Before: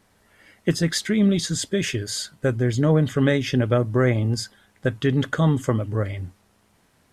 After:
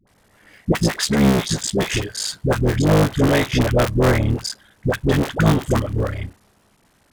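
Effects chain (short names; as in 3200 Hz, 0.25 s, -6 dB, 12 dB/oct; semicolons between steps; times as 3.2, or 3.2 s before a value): cycle switcher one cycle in 3, muted; dispersion highs, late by 73 ms, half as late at 550 Hz; gain +5 dB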